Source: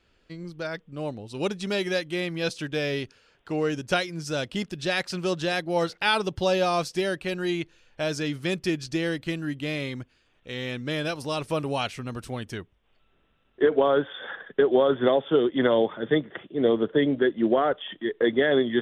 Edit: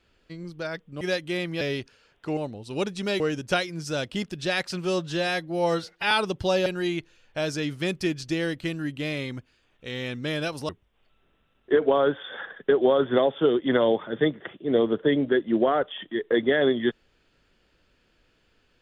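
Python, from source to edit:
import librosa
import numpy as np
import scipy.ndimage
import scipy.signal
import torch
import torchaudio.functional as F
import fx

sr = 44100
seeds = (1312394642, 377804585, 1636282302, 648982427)

y = fx.edit(x, sr, fx.move(start_s=1.01, length_s=0.83, to_s=3.6),
    fx.cut(start_s=2.44, length_s=0.4),
    fx.stretch_span(start_s=5.22, length_s=0.86, factor=1.5),
    fx.cut(start_s=6.63, length_s=0.66),
    fx.cut(start_s=11.32, length_s=1.27), tone=tone)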